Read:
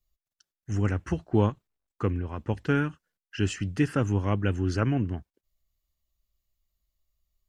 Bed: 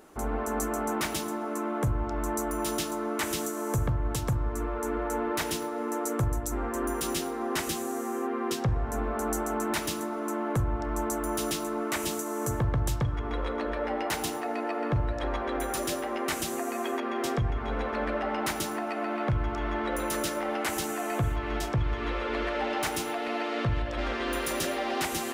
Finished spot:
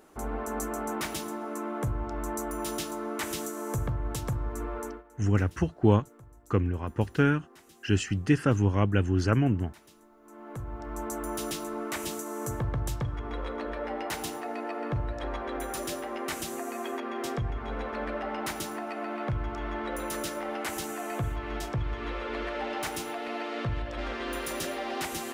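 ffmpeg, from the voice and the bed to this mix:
ffmpeg -i stem1.wav -i stem2.wav -filter_complex "[0:a]adelay=4500,volume=1.5dB[link_01];[1:a]volume=18.5dB,afade=type=out:start_time=4.79:duration=0.24:silence=0.0794328,afade=type=in:start_time=10.23:duration=0.98:silence=0.0841395[link_02];[link_01][link_02]amix=inputs=2:normalize=0" out.wav

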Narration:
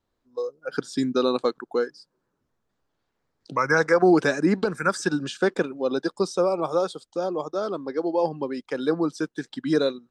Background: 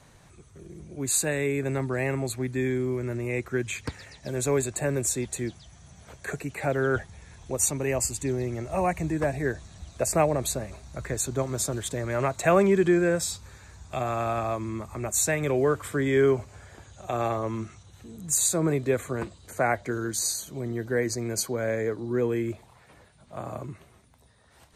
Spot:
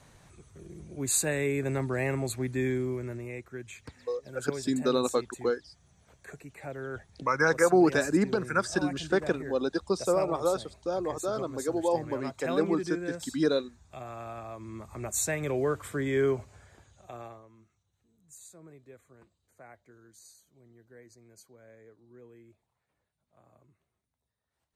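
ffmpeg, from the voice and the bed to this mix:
ffmpeg -i stem1.wav -i stem2.wav -filter_complex "[0:a]adelay=3700,volume=-4dB[link_01];[1:a]volume=6dB,afade=type=out:start_time=2.7:duration=0.74:silence=0.281838,afade=type=in:start_time=14.53:duration=0.49:silence=0.398107,afade=type=out:start_time=16.27:duration=1.2:silence=0.0794328[link_02];[link_01][link_02]amix=inputs=2:normalize=0" out.wav

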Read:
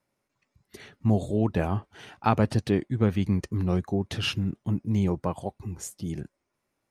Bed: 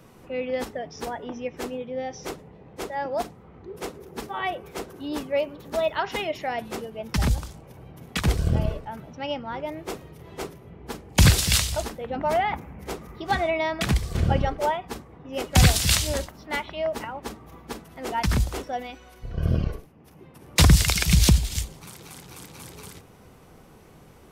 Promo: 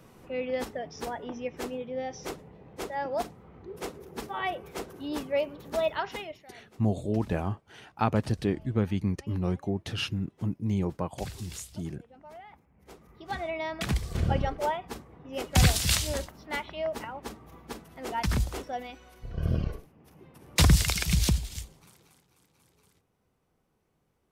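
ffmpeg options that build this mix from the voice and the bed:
ffmpeg -i stem1.wav -i stem2.wav -filter_complex "[0:a]adelay=5750,volume=-3.5dB[link_01];[1:a]volume=17dB,afade=type=out:start_time=5.88:duration=0.57:silence=0.0841395,afade=type=in:start_time=12.7:duration=1.44:silence=0.1,afade=type=out:start_time=20.76:duration=1.51:silence=0.112202[link_02];[link_01][link_02]amix=inputs=2:normalize=0" out.wav

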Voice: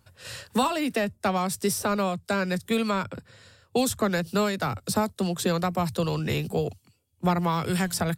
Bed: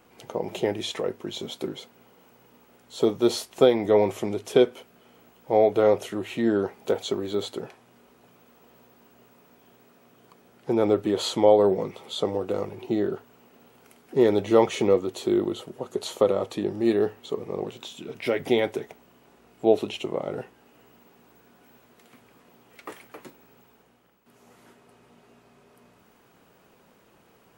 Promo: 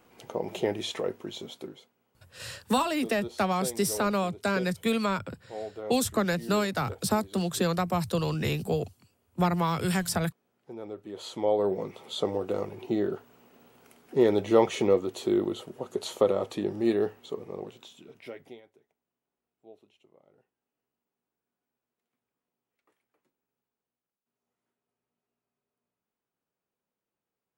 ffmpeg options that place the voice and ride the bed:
ffmpeg -i stem1.wav -i stem2.wav -filter_complex "[0:a]adelay=2150,volume=-1.5dB[link_01];[1:a]volume=13.5dB,afade=type=out:start_time=1.09:duration=0.86:silence=0.158489,afade=type=in:start_time=11.05:duration=1.1:silence=0.158489,afade=type=out:start_time=16.76:duration=1.86:silence=0.0316228[link_02];[link_01][link_02]amix=inputs=2:normalize=0" out.wav

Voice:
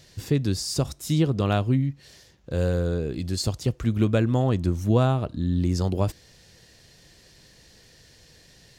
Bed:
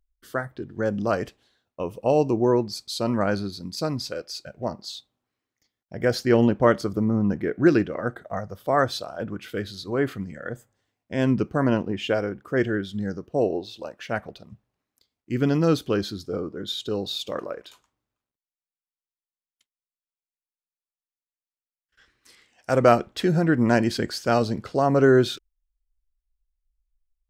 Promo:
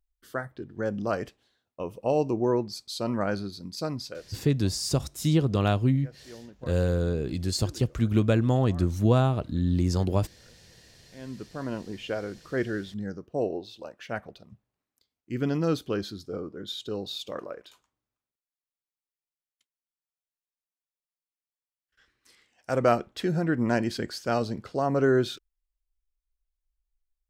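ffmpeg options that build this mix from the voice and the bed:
ffmpeg -i stem1.wav -i stem2.wav -filter_complex "[0:a]adelay=4150,volume=-1dB[link_01];[1:a]volume=17.5dB,afade=type=out:start_time=3.9:duration=0.79:silence=0.0707946,afade=type=in:start_time=11.04:duration=1.46:silence=0.0794328[link_02];[link_01][link_02]amix=inputs=2:normalize=0" out.wav

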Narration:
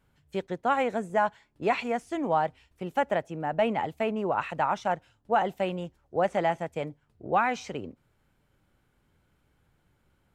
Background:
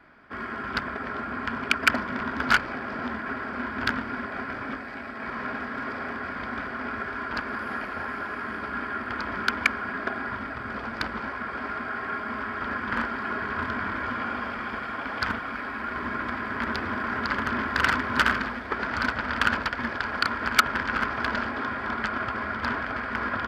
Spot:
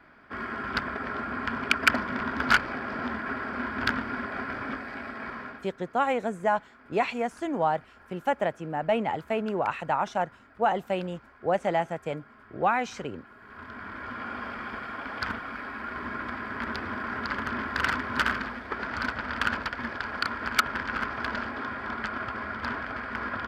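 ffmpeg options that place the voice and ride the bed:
ffmpeg -i stem1.wav -i stem2.wav -filter_complex "[0:a]adelay=5300,volume=0dB[link_01];[1:a]volume=17.5dB,afade=type=out:start_time=5.11:duration=0.57:silence=0.0841395,afade=type=in:start_time=13.39:duration=1.11:silence=0.125893[link_02];[link_01][link_02]amix=inputs=2:normalize=0" out.wav

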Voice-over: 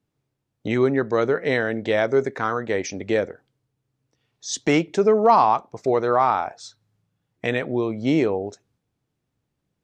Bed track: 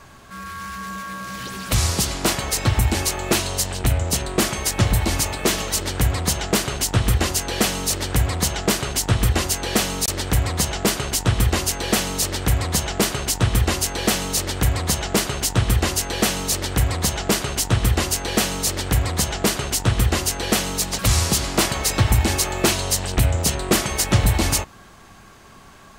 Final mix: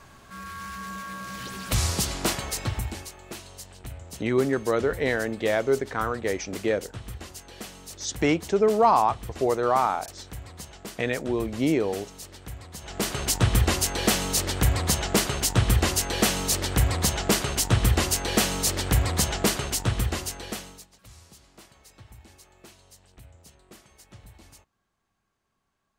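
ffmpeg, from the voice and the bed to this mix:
ffmpeg -i stem1.wav -i stem2.wav -filter_complex "[0:a]adelay=3550,volume=-3.5dB[link_01];[1:a]volume=12.5dB,afade=type=out:start_time=2.22:duration=0.89:silence=0.177828,afade=type=in:start_time=12.79:duration=0.51:silence=0.133352,afade=type=out:start_time=19.33:duration=1.55:silence=0.0334965[link_02];[link_01][link_02]amix=inputs=2:normalize=0" out.wav

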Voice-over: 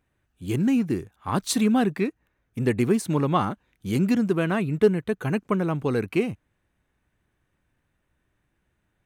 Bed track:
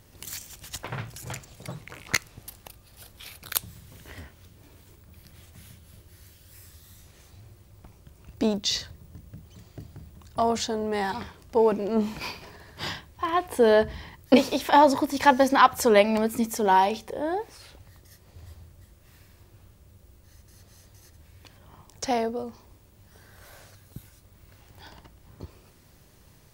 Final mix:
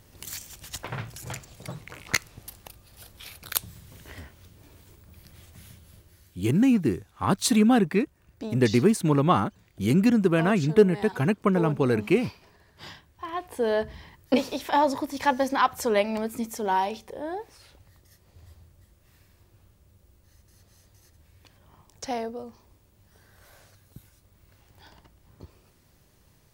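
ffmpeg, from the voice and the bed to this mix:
ffmpeg -i stem1.wav -i stem2.wav -filter_complex "[0:a]adelay=5950,volume=1.5dB[link_01];[1:a]volume=6dB,afade=type=out:start_time=5.79:duration=0.65:silence=0.281838,afade=type=in:start_time=12.82:duration=1.19:silence=0.501187[link_02];[link_01][link_02]amix=inputs=2:normalize=0" out.wav

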